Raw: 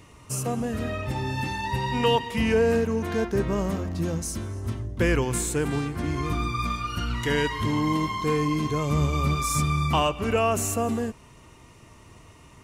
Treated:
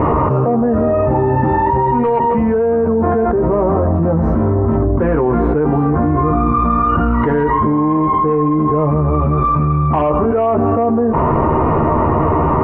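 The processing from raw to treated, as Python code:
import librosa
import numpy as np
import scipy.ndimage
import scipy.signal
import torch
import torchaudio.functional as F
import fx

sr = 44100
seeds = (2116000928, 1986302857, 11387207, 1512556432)

p1 = scipy.signal.sosfilt(scipy.signal.butter(4, 1100.0, 'lowpass', fs=sr, output='sos'), x)
p2 = fx.low_shelf(p1, sr, hz=240.0, db=-11.5)
p3 = fx.fold_sine(p2, sr, drive_db=6, ceiling_db=-11.5)
p4 = p2 + (p3 * librosa.db_to_amplitude(-6.5))
p5 = fx.doubler(p4, sr, ms=13.0, db=-3.5)
p6 = fx.env_flatten(p5, sr, amount_pct=100)
y = p6 * librosa.db_to_amplitude(-3.0)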